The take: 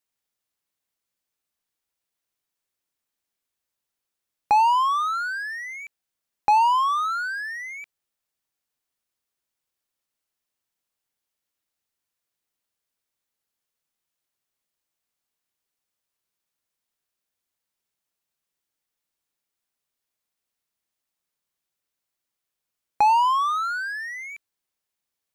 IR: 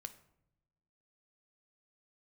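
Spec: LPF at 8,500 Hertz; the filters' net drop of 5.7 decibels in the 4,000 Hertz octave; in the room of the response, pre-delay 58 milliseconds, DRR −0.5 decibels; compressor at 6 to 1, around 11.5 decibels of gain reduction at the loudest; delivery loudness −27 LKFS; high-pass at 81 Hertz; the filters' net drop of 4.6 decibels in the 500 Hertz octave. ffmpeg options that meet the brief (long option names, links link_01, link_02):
-filter_complex "[0:a]highpass=81,lowpass=8500,equalizer=frequency=500:width_type=o:gain=-6.5,equalizer=frequency=4000:width_type=o:gain=-8,acompressor=threshold=-30dB:ratio=6,asplit=2[link_01][link_02];[1:a]atrim=start_sample=2205,adelay=58[link_03];[link_02][link_03]afir=irnorm=-1:irlink=0,volume=5dB[link_04];[link_01][link_04]amix=inputs=2:normalize=0,volume=2.5dB"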